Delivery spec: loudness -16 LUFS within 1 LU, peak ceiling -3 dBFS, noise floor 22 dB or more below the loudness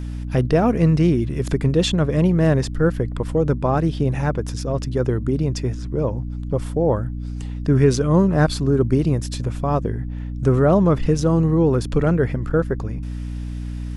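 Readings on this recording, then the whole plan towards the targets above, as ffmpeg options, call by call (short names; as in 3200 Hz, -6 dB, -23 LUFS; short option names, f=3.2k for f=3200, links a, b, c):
hum 60 Hz; harmonics up to 300 Hz; hum level -25 dBFS; loudness -20.0 LUFS; peak -4.0 dBFS; loudness target -16.0 LUFS
-> -af "bandreject=f=60:t=h:w=6,bandreject=f=120:t=h:w=6,bandreject=f=180:t=h:w=6,bandreject=f=240:t=h:w=6,bandreject=f=300:t=h:w=6"
-af "volume=4dB,alimiter=limit=-3dB:level=0:latency=1"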